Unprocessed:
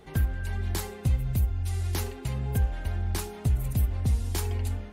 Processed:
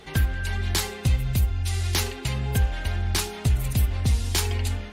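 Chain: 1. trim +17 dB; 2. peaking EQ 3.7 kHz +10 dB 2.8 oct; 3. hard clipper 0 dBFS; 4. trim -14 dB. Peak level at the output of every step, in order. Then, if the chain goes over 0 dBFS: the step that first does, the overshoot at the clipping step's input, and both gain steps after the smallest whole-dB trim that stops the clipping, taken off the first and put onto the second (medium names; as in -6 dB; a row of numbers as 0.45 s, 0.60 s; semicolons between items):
+1.0 dBFS, +5.5 dBFS, 0.0 dBFS, -14.0 dBFS; step 1, 5.5 dB; step 1 +11 dB, step 4 -8 dB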